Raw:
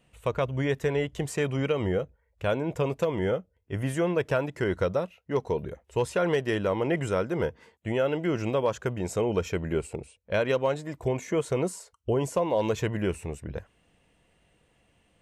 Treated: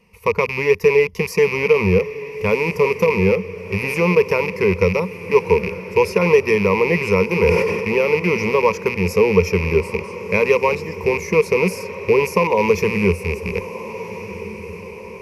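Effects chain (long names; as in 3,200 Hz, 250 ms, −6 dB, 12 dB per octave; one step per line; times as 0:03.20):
loose part that buzzes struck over −32 dBFS, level −24 dBFS
EQ curve with evenly spaced ripples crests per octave 0.84, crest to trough 18 dB
feedback delay with all-pass diffusion 1,413 ms, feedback 52%, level −13.5 dB
0:07.36–0:07.89: level that may fall only so fast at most 30 dB per second
level +5.5 dB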